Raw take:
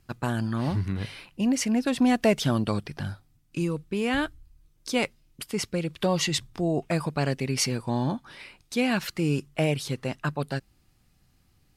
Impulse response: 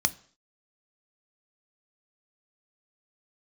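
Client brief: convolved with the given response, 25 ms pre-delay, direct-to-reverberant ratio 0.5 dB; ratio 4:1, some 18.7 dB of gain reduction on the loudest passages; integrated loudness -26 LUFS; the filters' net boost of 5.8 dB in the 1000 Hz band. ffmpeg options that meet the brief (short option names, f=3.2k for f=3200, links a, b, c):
-filter_complex "[0:a]equalizer=f=1k:t=o:g=8,acompressor=threshold=-39dB:ratio=4,asplit=2[a][b];[1:a]atrim=start_sample=2205,adelay=25[c];[b][c]afir=irnorm=-1:irlink=0,volume=-9dB[d];[a][d]amix=inputs=2:normalize=0,volume=12dB"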